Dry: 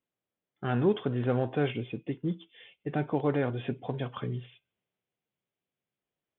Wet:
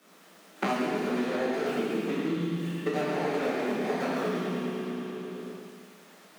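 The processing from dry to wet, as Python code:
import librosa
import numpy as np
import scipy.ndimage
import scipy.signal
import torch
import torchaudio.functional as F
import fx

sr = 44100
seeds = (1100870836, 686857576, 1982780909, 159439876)

y = scipy.ndimage.median_filter(x, 41, mode='constant')
y = scipy.signal.sosfilt(scipy.signal.butter(16, 170.0, 'highpass', fs=sr, output='sos'), y)
y = fx.peak_eq(y, sr, hz=340.0, db=-10.0, octaves=2.2)
y = fx.over_compress(y, sr, threshold_db=-41.0, ratio=-1.0)
y = fx.echo_feedback(y, sr, ms=111, feedback_pct=59, wet_db=-8)
y = fx.rev_plate(y, sr, seeds[0], rt60_s=1.5, hf_ratio=0.9, predelay_ms=0, drr_db=-9.0)
y = fx.band_squash(y, sr, depth_pct=100)
y = y * librosa.db_to_amplitude(4.0)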